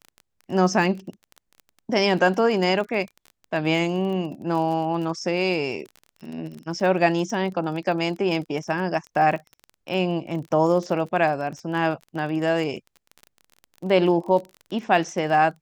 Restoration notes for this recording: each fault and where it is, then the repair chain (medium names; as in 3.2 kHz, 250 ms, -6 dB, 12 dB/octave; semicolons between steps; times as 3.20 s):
crackle 28 per s -31 dBFS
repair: de-click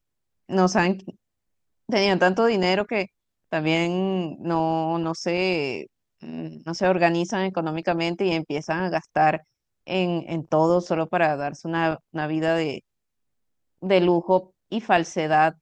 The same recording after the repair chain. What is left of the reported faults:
nothing left